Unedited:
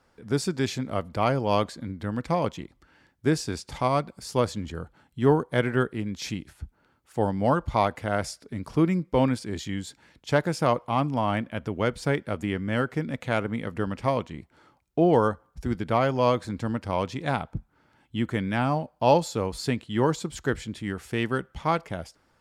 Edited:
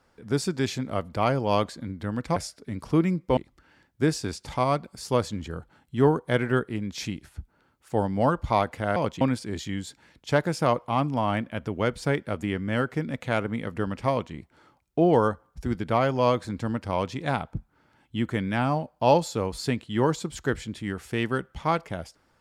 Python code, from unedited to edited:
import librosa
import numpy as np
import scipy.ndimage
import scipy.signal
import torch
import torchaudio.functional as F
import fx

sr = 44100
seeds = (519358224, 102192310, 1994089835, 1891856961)

y = fx.edit(x, sr, fx.swap(start_s=2.36, length_s=0.25, other_s=8.2, other_length_s=1.01), tone=tone)